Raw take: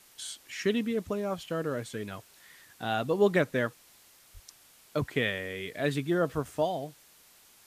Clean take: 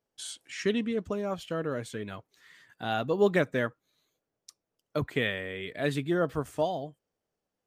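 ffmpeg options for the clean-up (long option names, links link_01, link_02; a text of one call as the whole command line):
ffmpeg -i in.wav -filter_complex "[0:a]asplit=3[link_01][link_02][link_03];[link_01]afade=type=out:start_time=4.33:duration=0.02[link_04];[link_02]highpass=frequency=140:width=0.5412,highpass=frequency=140:width=1.3066,afade=type=in:start_time=4.33:duration=0.02,afade=type=out:start_time=4.45:duration=0.02[link_05];[link_03]afade=type=in:start_time=4.45:duration=0.02[link_06];[link_04][link_05][link_06]amix=inputs=3:normalize=0,afftdn=noise_reduction=27:noise_floor=-59" out.wav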